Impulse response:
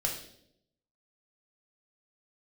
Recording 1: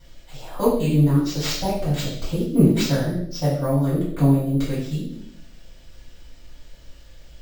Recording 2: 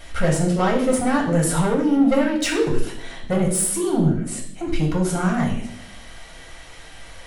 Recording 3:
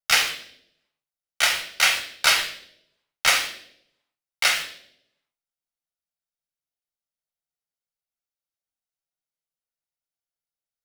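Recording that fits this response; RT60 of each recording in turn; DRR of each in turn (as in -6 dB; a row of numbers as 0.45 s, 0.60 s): 2; 0.75 s, 0.75 s, 0.75 s; -11.0 dB, -1.0 dB, 3.5 dB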